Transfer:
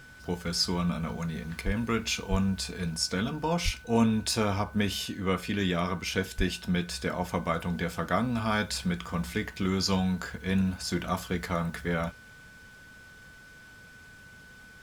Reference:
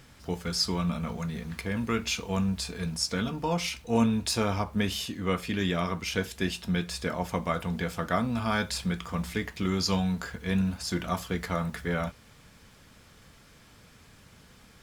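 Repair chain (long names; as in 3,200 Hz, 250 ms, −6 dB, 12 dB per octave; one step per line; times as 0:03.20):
notch filter 1,500 Hz, Q 30
high-pass at the plosives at 0:01.65/0:02.30/0:03.64/0:06.37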